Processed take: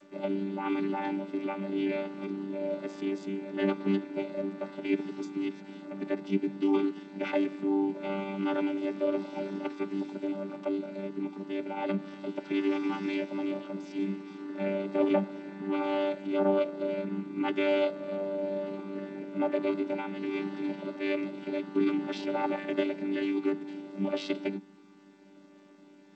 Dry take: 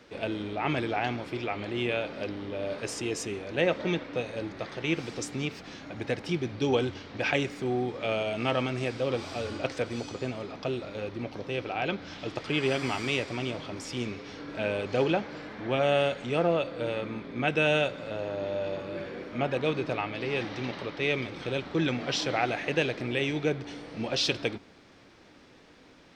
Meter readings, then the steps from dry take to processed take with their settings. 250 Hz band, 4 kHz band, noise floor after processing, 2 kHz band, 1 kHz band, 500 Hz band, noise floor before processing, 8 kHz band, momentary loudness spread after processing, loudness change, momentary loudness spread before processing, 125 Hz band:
+3.5 dB, -11.0 dB, -55 dBFS, -8.0 dB, -3.5 dB, -2.0 dB, -55 dBFS, under -15 dB, 8 LU, -1.5 dB, 9 LU, -9.0 dB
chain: chord vocoder bare fifth, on G3; G.722 64 kbps 16000 Hz

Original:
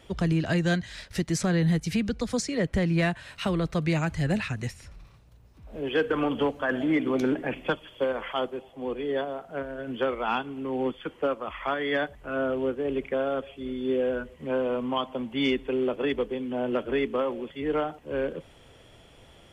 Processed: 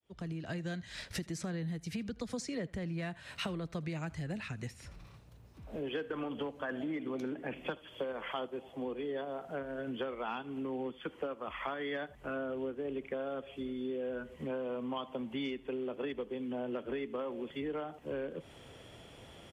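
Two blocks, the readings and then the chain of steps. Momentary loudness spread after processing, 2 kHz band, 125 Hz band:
5 LU, -11.5 dB, -12.5 dB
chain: opening faded in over 1.15 s; low shelf 250 Hz +5.5 dB; compressor 6:1, threshold -35 dBFS, peak gain reduction 16.5 dB; HPF 150 Hz 6 dB/oct; echo 79 ms -23 dB

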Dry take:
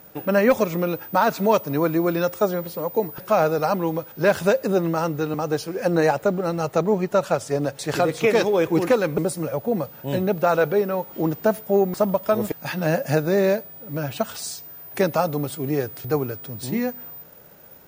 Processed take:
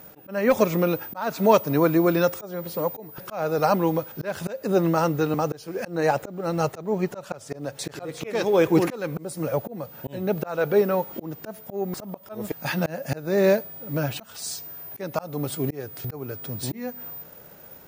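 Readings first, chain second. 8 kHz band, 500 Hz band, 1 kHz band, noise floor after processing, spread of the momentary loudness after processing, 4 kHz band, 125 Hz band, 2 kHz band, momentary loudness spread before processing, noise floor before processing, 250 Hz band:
-2.0 dB, -3.5 dB, -3.5 dB, -47 dBFS, 15 LU, -2.5 dB, -2.0 dB, -4.5 dB, 8 LU, -44 dBFS, -2.0 dB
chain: auto swell 0.349 s; gain +1.5 dB

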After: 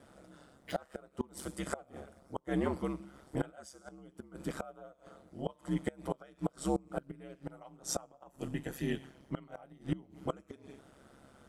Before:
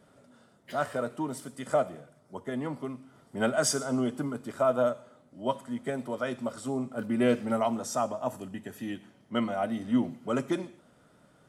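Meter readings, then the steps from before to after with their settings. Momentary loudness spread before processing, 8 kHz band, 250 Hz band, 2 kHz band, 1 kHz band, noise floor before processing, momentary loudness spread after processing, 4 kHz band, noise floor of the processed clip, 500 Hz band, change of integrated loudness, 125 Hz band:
14 LU, -8.5 dB, -8.0 dB, -9.5 dB, -11.0 dB, -62 dBFS, 18 LU, -9.0 dB, -67 dBFS, -11.0 dB, -8.5 dB, -2.5 dB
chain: ring modulator 68 Hz; flipped gate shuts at -25 dBFS, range -27 dB; gain +4.5 dB

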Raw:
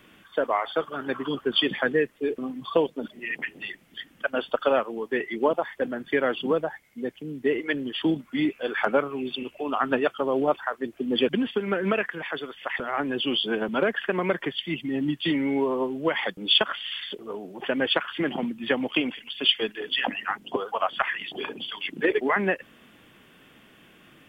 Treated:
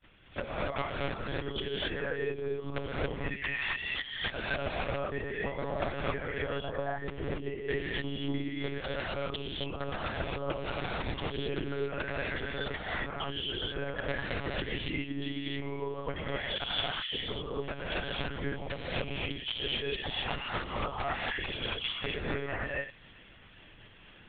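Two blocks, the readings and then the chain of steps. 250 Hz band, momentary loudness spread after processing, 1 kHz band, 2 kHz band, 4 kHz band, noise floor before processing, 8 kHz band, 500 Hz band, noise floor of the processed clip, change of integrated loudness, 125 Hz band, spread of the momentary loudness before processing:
-11.0 dB, 4 LU, -8.5 dB, -6.0 dB, -7.5 dB, -55 dBFS, n/a, -9.5 dB, -54 dBFS, -8.0 dB, +2.0 dB, 9 LU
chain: expander -50 dBFS; high shelf 2400 Hz +5 dB; reverse; compressor 16:1, threshold -34 dBFS, peak gain reduction 23 dB; reverse; transient shaper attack +11 dB, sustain -9 dB; wrapped overs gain 18.5 dB; on a send: thin delay 0.403 s, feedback 70%, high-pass 2200 Hz, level -21 dB; on the sum: non-linear reverb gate 0.3 s rising, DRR -5.5 dB; monotone LPC vocoder at 8 kHz 140 Hz; gain -6 dB

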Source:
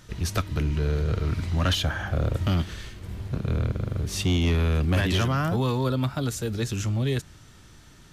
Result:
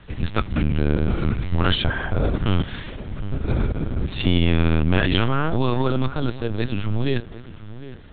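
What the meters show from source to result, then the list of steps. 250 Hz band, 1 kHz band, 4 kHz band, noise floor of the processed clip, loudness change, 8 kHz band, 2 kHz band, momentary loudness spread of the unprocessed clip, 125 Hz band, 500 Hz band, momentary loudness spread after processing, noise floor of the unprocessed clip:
+5.0 dB, +4.5 dB, +3.0 dB, -39 dBFS, +3.0 dB, under -40 dB, +5.0 dB, 6 LU, +2.0 dB, +4.0 dB, 14 LU, -51 dBFS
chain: on a send: darkening echo 0.757 s, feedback 34%, low-pass 1700 Hz, level -15 dB; on the sum: LPC vocoder at 8 kHz pitch kept; gain +4.5 dB

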